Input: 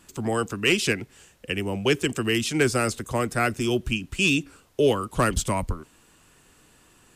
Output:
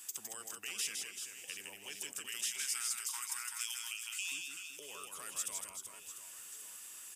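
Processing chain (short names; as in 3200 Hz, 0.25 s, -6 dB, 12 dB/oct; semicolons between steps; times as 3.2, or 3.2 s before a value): 2.26–4.32 brick-wall FIR high-pass 820 Hz; limiter -19.5 dBFS, peak gain reduction 9 dB; compressor 2:1, threshold -52 dBFS, peak gain reduction 15.5 dB; differentiator; notch 4200 Hz, Q 7.4; reverse bouncing-ball echo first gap 0.16 s, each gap 1.4×, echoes 5; gain +9.5 dB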